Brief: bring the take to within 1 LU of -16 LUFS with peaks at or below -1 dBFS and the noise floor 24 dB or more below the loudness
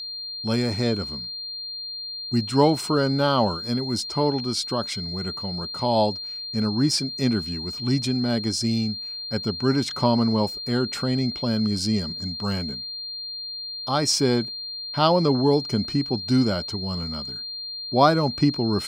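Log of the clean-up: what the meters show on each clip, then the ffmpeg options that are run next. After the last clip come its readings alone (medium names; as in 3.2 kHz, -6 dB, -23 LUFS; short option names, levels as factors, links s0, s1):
steady tone 4.2 kHz; tone level -31 dBFS; loudness -24.0 LUFS; peak level -4.0 dBFS; loudness target -16.0 LUFS
-> -af "bandreject=f=4200:w=30"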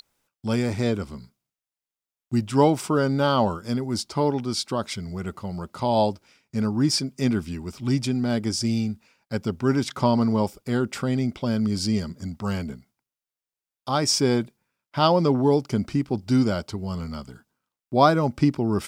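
steady tone not found; loudness -24.0 LUFS; peak level -4.5 dBFS; loudness target -16.0 LUFS
-> -af "volume=2.51,alimiter=limit=0.891:level=0:latency=1"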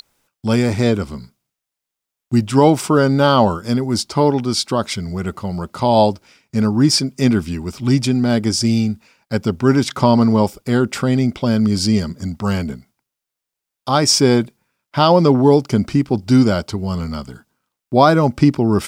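loudness -16.5 LUFS; peak level -1.0 dBFS; noise floor -83 dBFS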